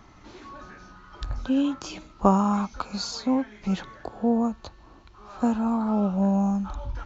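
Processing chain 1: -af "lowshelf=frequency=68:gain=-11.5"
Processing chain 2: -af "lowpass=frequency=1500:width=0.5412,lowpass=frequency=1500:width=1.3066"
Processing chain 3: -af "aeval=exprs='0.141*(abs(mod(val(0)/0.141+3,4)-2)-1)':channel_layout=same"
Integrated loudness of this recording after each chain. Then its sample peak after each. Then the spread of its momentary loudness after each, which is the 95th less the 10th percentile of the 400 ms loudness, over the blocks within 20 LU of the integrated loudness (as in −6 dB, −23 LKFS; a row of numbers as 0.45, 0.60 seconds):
−26.5, −26.0, −26.5 LKFS; −4.5, −5.0, −17.0 dBFS; 19, 19, 20 LU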